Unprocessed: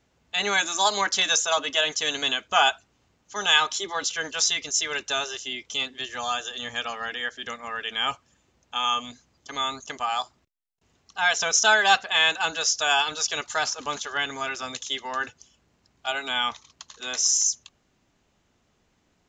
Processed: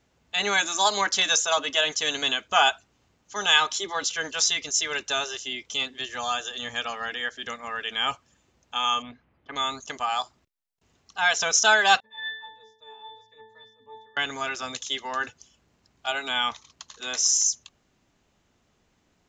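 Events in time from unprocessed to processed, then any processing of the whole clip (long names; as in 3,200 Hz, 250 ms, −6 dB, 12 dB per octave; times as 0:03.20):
0:09.02–0:09.56: low-pass filter 2,600 Hz 24 dB per octave
0:12.00–0:14.17: resonances in every octave A, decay 0.56 s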